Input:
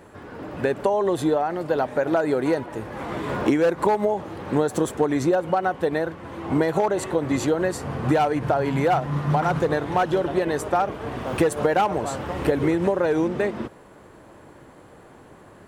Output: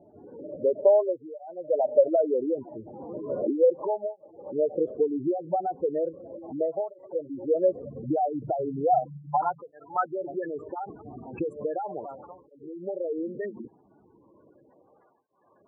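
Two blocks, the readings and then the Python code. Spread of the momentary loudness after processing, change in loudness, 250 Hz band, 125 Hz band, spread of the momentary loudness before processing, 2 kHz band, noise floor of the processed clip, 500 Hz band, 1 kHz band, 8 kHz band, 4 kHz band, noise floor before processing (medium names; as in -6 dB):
18 LU, -4.5 dB, -9.5 dB, -16.5 dB, 8 LU, -19.0 dB, -62 dBFS, -3.0 dB, -6.5 dB, under -40 dB, under -40 dB, -48 dBFS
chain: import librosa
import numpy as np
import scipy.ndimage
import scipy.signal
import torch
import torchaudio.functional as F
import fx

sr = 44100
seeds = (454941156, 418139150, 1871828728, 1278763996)

y = fx.spec_gate(x, sr, threshold_db=-10, keep='strong')
y = fx.filter_sweep_lowpass(y, sr, from_hz=600.0, to_hz=3000.0, start_s=8.59, end_s=11.39, q=5.6)
y = fx.flanger_cancel(y, sr, hz=0.36, depth_ms=2.0)
y = F.gain(torch.from_numpy(y), -8.0).numpy()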